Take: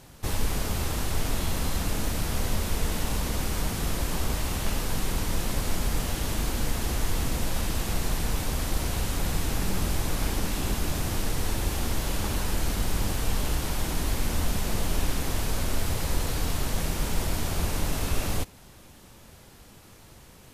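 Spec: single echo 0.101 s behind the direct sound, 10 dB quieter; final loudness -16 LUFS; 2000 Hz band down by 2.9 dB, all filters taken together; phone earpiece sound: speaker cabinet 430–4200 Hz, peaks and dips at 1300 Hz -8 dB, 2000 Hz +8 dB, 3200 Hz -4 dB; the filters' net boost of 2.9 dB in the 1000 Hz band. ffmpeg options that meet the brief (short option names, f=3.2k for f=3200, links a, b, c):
-af "highpass=430,equalizer=f=1.3k:t=q:w=4:g=-8,equalizer=f=2k:t=q:w=4:g=8,equalizer=f=3.2k:t=q:w=4:g=-4,lowpass=f=4.2k:w=0.5412,lowpass=f=4.2k:w=1.3066,equalizer=f=1k:t=o:g=7.5,equalizer=f=2k:t=o:g=-8.5,aecho=1:1:101:0.316,volume=20dB"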